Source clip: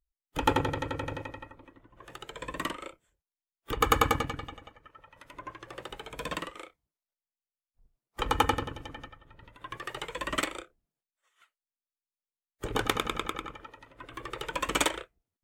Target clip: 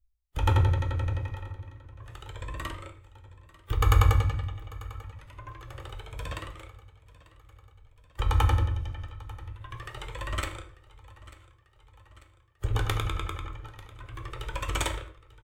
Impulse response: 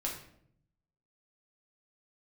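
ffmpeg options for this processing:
-filter_complex "[0:a]lowshelf=frequency=140:width_type=q:width=3:gain=13,aecho=1:1:893|1786|2679|3572|4465:0.1|0.058|0.0336|0.0195|0.0113,asplit=2[link_01][link_02];[1:a]atrim=start_sample=2205,afade=type=out:start_time=0.3:duration=0.01,atrim=end_sample=13671[link_03];[link_02][link_03]afir=irnorm=-1:irlink=0,volume=-3.5dB[link_04];[link_01][link_04]amix=inputs=2:normalize=0,volume=-8dB"

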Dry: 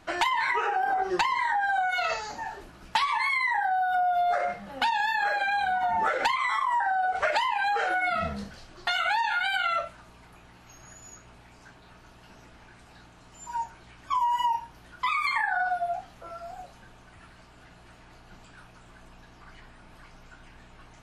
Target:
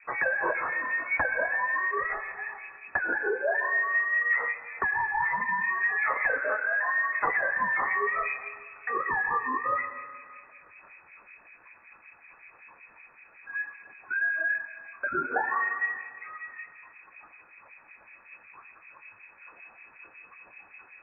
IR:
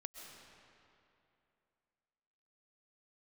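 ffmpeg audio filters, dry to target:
-filter_complex "[0:a]asettb=1/sr,asplit=3[link_01][link_02][link_03];[link_01]atrim=end=0.554[link_04];[link_02]atrim=start=0.55:end=1.17,asetpts=PTS-STARTPTS,afade=type=in:duration=0.004:curve=qsin,afade=type=out:start_time=0.616:duration=0.004:curve=qsin,asoftclip=type=hard:threshold=-27dB[link_05];[link_03]atrim=start=1.166[link_06];[link_04][link_05]acrossfade=duration=0.004:curve1=hsin:curve2=qsin[link_07];[link_07][link_06]acrossfade=duration=0.004:curve1=qsin:curve2=hsin,acrossover=split=940[link_08][link_09];[link_08]aeval=exprs='val(0)*(1-1/2+1/2*cos(2*PI*5.3*n/s))':channel_layout=same[link_10];[link_09]aeval=exprs='val(0)*(1-1/2-1/2*cos(2*PI*5.3*n/s))':channel_layout=same[link_11];[link_10][link_11]amix=inputs=2:normalize=0,asplit=2[link_12][link_13];[1:a]atrim=start_sample=2205,asetrate=61740,aresample=44100[link_14];[link_13][link_14]afir=irnorm=-1:irlink=0,volume=3.5dB[link_15];[link_12][link_15]amix=inputs=2:normalize=0,lowpass=frequency=2200:width_type=q:width=0.5098,lowpass=frequency=2200:width_type=q:width=0.6013,lowpass=frequency=2200:width_type=q:width=0.9,lowpass=frequency=2200:width_type=q:width=2.563,afreqshift=-2600"

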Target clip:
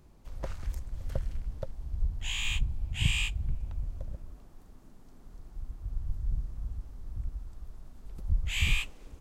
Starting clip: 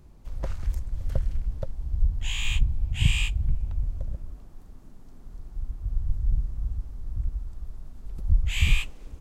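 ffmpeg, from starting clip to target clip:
ffmpeg -i in.wav -af "lowshelf=frequency=180:gain=-6,volume=-1.5dB" out.wav

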